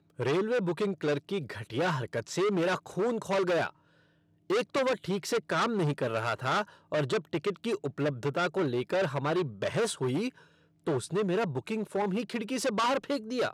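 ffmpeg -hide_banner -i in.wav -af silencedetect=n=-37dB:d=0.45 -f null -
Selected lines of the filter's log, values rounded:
silence_start: 3.69
silence_end: 4.50 | silence_duration: 0.81
silence_start: 10.29
silence_end: 10.87 | silence_duration: 0.58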